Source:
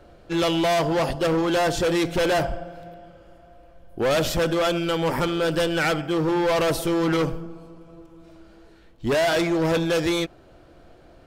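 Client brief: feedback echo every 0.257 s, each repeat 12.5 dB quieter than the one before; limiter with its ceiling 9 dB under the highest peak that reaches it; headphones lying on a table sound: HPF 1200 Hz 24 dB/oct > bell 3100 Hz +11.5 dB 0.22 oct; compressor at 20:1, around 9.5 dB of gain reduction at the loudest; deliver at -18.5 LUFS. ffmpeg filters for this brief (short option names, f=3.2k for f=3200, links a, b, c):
-af "acompressor=threshold=-29dB:ratio=20,alimiter=level_in=6dB:limit=-24dB:level=0:latency=1,volume=-6dB,highpass=f=1.2k:w=0.5412,highpass=f=1.2k:w=1.3066,equalizer=f=3.1k:t=o:w=0.22:g=11.5,aecho=1:1:257|514|771:0.237|0.0569|0.0137,volume=19.5dB"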